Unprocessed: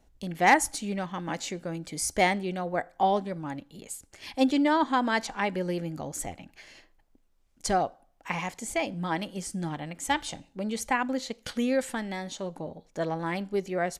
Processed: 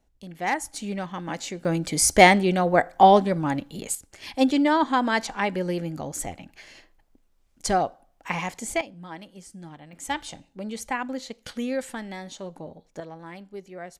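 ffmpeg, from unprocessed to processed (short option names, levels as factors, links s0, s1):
-af "asetnsamples=n=441:p=0,asendcmd='0.76 volume volume 1dB;1.65 volume volume 10dB;3.95 volume volume 3dB;8.81 volume volume -9.5dB;9.93 volume volume -2dB;13 volume volume -10dB',volume=0.501"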